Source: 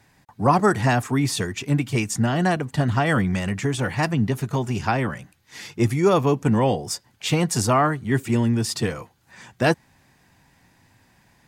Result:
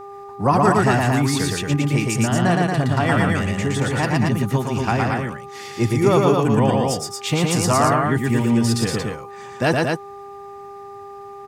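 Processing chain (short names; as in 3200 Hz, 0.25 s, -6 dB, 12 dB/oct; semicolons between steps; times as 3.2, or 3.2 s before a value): loudspeakers at several distances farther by 40 m -2 dB, 78 m -4 dB; buzz 400 Hz, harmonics 3, -37 dBFS -2 dB/oct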